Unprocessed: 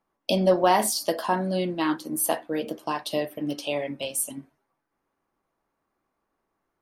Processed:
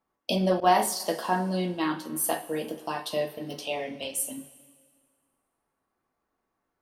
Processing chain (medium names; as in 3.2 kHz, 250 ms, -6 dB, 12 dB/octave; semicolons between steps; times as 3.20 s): two-slope reverb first 0.25 s, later 1.8 s, from -18 dB, DRR 3 dB; 0.60–1.00 s: expander -20 dBFS; trim -3.5 dB